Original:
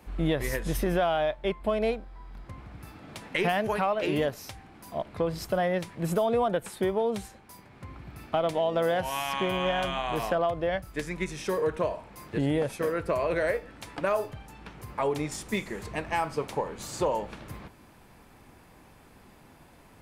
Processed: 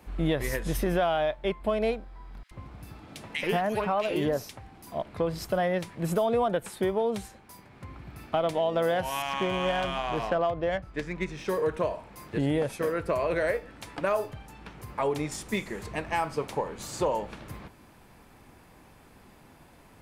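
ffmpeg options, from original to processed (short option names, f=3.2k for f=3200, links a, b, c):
-filter_complex "[0:a]asettb=1/sr,asplit=3[a][b][c];[a]atrim=end=2.434[d];[b]atrim=start=2.43:end=4.87,asetpts=PTS-STARTPTS,afade=t=in:d=0.004:c=qsin,afade=t=out:st=2.436:d=0.004:c=qsin,acrossover=split=1800[e][f];[e]adelay=80[g];[g][f]amix=inputs=2:normalize=0,atrim=end_sample=107604[h];[c]atrim=start=4.866[i];[d][h]acrossfade=d=0.004:c1=hsin:c2=qsin[j];[j][i]acrossfade=d=0.004:c1=qsin:c2=hsin,asettb=1/sr,asplit=3[k][l][m];[k]atrim=end=9.224[n];[l]atrim=start=9.22:end=11.48,asetpts=PTS-STARTPTS,afade=t=in:d=0.004:c=qsin,afade=t=out:st=2.256:d=0.004:c=qsin,adynamicsmooth=sensitivity=5.5:basefreq=3.7k[o];[m]atrim=start=11.476[p];[n][o]acrossfade=d=0.004:c1=hsin:c2=qsin[q];[q][p]acrossfade=d=0.004:c1=qsin:c2=hsin"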